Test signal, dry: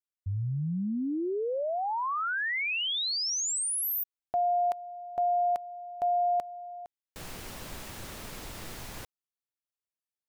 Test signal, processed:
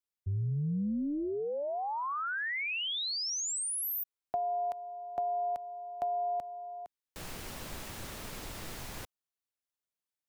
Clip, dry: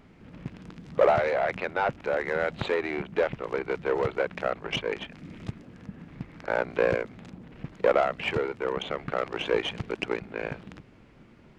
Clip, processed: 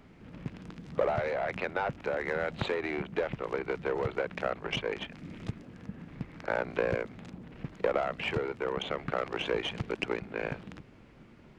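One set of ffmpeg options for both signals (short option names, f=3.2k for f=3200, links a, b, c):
-filter_complex "[0:a]acrossover=split=210[a][b];[b]acompressor=threshold=-38dB:ratio=2:attack=70:release=65:knee=2.83:detection=peak[c];[a][c]amix=inputs=2:normalize=0,tremolo=f=290:d=0.182"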